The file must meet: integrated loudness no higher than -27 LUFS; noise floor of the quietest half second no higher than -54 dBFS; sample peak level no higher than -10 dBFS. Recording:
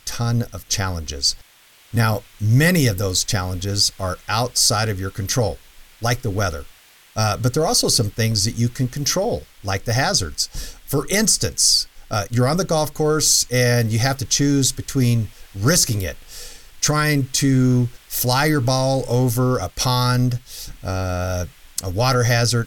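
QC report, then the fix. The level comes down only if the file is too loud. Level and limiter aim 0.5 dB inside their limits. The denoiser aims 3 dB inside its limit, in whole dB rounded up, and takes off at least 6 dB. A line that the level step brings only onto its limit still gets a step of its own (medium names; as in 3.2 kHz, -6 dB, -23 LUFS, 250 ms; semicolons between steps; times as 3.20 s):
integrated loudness -19.5 LUFS: fail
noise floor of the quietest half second -51 dBFS: fail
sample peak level -4.0 dBFS: fail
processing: trim -8 dB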